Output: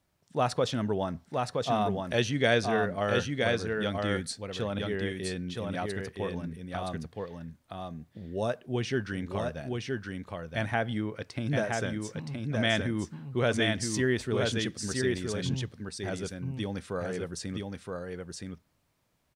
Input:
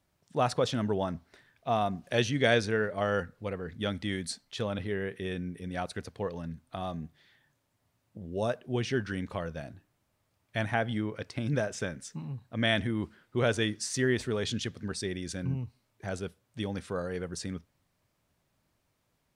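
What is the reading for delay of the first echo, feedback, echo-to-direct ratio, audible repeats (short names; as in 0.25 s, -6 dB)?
0.97 s, no steady repeat, -3.5 dB, 1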